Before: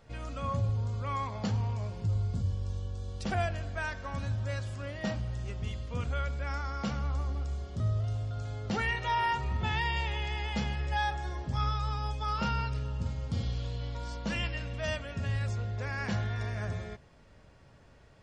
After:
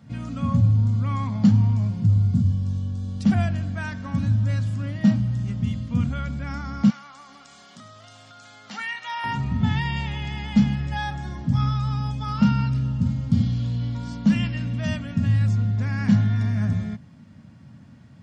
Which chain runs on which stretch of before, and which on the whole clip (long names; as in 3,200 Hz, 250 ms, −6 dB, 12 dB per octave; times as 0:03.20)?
0:06.90–0:09.24: high-pass filter 970 Hz + upward compression, threshold −42 dBFS
whole clip: high-pass filter 95 Hz 24 dB per octave; low shelf with overshoot 310 Hz +10 dB, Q 3; notch filter 2,600 Hz, Q 28; level +2.5 dB